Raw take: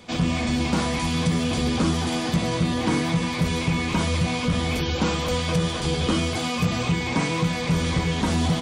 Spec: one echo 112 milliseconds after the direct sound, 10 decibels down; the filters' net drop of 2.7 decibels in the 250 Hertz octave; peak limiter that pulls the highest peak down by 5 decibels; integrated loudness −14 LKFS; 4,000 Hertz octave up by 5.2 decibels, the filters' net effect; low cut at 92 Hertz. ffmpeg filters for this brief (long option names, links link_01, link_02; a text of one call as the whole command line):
ffmpeg -i in.wav -af "highpass=92,equalizer=frequency=250:width_type=o:gain=-3.5,equalizer=frequency=4000:width_type=o:gain=6.5,alimiter=limit=-16dB:level=0:latency=1,aecho=1:1:112:0.316,volume=10dB" out.wav